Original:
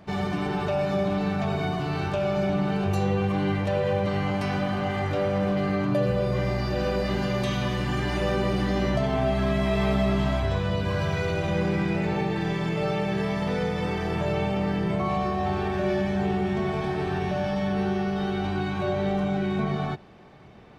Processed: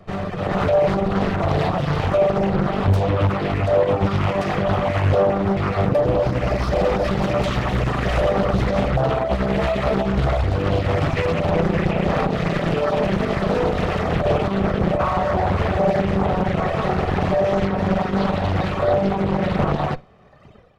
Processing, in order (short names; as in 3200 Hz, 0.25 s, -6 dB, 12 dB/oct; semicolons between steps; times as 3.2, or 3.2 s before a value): minimum comb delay 1.6 ms; limiter -20.5 dBFS, peak gain reduction 6.5 dB; AGC gain up to 9 dB; on a send: flutter echo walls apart 9 m, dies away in 0.23 s; on the sum: reverb removal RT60 1.5 s; high shelf 2300 Hz -9 dB; Doppler distortion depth 0.86 ms; gain +4.5 dB